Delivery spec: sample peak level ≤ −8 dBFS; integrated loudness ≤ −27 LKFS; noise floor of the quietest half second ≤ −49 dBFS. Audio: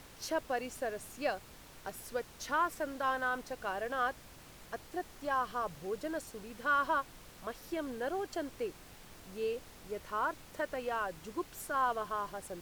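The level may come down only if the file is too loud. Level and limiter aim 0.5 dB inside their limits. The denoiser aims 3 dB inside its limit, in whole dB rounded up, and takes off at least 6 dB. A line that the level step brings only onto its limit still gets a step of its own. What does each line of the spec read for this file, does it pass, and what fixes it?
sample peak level −20.0 dBFS: in spec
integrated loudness −37.0 LKFS: in spec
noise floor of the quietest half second −54 dBFS: in spec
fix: no processing needed

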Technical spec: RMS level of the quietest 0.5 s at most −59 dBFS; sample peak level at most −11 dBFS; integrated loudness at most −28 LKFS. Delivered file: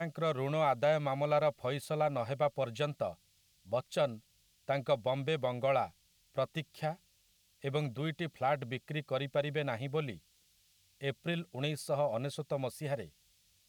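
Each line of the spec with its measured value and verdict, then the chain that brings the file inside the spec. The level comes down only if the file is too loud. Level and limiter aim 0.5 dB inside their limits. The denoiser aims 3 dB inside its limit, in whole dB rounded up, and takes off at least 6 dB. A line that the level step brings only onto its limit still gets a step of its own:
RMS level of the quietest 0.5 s −71 dBFS: in spec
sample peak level −17.5 dBFS: in spec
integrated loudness −35.0 LKFS: in spec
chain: no processing needed

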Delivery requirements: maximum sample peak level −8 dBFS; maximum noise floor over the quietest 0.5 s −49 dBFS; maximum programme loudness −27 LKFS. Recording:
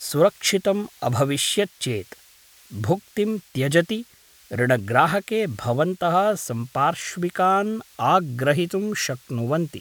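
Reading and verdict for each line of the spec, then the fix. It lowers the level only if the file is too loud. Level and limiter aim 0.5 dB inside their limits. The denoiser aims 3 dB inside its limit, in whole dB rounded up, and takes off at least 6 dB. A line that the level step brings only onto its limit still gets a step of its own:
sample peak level −3.0 dBFS: out of spec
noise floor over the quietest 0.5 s −52 dBFS: in spec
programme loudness −22.5 LKFS: out of spec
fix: level −5 dB
brickwall limiter −8.5 dBFS

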